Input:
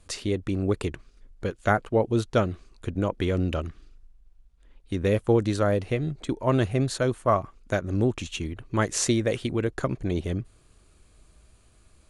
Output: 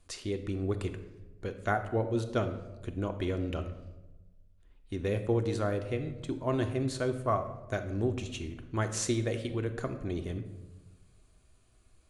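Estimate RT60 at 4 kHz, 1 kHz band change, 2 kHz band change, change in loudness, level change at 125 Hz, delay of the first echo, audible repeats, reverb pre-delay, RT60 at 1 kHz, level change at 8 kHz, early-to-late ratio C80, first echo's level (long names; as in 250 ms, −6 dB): 0.70 s, −6.5 dB, −7.0 dB, −6.5 dB, −6.0 dB, no echo audible, no echo audible, 3 ms, 0.95 s, −7.5 dB, 12.5 dB, no echo audible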